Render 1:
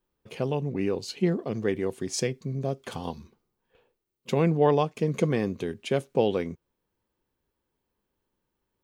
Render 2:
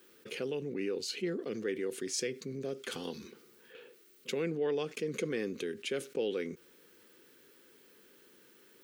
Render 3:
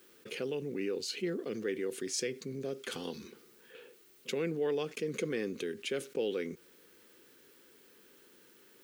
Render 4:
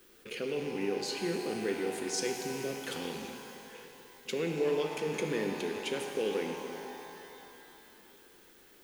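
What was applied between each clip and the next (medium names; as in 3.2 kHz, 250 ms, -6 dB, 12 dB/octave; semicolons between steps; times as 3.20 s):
high-pass 340 Hz 12 dB/octave; high-order bell 810 Hz -13.5 dB 1.1 oct; level flattener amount 50%; trim -8.5 dB
bit crusher 11-bit
rattle on loud lows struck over -55 dBFS, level -38 dBFS; added noise pink -75 dBFS; pitch-shifted reverb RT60 3 s, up +12 st, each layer -8 dB, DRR 3.5 dB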